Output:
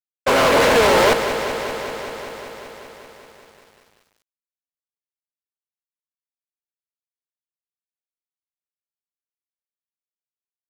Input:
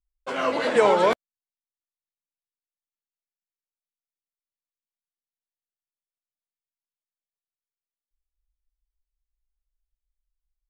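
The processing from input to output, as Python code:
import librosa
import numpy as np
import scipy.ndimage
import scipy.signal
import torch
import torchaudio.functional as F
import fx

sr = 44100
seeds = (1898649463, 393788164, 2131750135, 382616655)

y = fx.bin_compress(x, sr, power=0.6)
y = fx.fuzz(y, sr, gain_db=29.0, gate_db=-38.0)
y = fx.echo_crushed(y, sr, ms=193, feedback_pct=80, bits=8, wet_db=-10.0)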